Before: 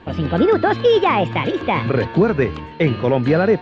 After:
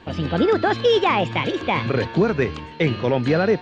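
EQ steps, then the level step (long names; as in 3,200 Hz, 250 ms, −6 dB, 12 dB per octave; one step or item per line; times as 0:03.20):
high-shelf EQ 4,000 Hz +12 dB
−3.5 dB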